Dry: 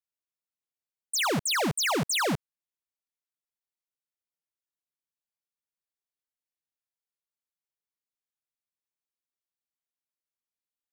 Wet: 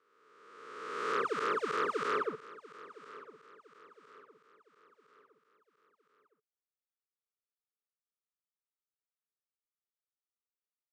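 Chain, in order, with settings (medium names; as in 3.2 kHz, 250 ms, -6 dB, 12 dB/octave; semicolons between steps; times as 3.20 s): reverse spectral sustain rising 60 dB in 1.60 s; two resonant band-passes 740 Hz, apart 1.5 oct; feedback delay 1011 ms, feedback 44%, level -18 dB; trim -2.5 dB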